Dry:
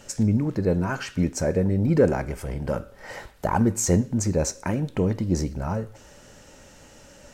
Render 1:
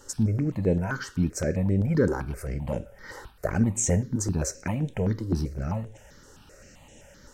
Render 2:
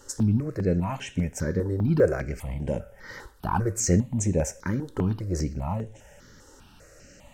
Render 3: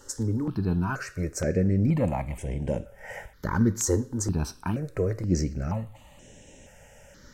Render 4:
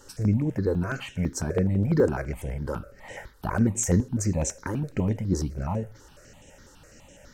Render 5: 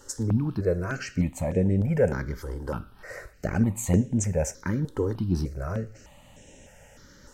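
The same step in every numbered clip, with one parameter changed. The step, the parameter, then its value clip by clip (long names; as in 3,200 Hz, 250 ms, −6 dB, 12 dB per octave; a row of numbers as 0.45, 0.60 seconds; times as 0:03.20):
step-sequenced phaser, speed: 7.7, 5, 2.1, 12, 3.3 Hertz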